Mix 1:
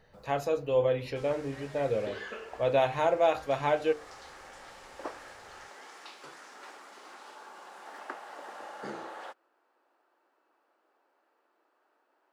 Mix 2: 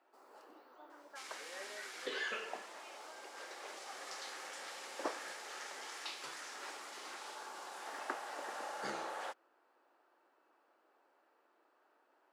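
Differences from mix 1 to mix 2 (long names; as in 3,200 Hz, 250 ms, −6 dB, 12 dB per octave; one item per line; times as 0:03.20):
speech: muted
second sound: add tilt shelving filter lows −7 dB, about 1,100 Hz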